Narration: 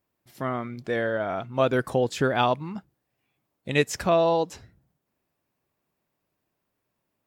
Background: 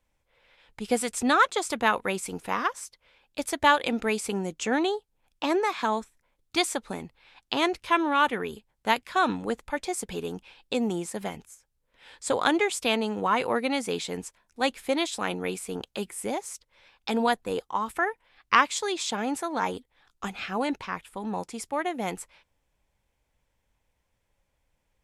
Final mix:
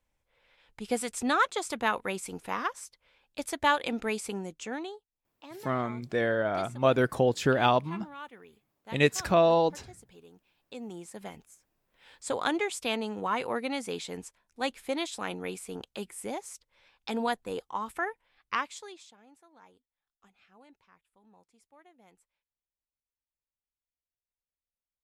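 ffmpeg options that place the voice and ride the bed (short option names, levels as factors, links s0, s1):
-filter_complex "[0:a]adelay=5250,volume=0.891[s0];[1:a]volume=3.55,afade=t=out:st=4.19:d=0.91:silence=0.149624,afade=t=in:st=10.54:d=1.17:silence=0.16788,afade=t=out:st=18.04:d=1.1:silence=0.0630957[s1];[s0][s1]amix=inputs=2:normalize=0"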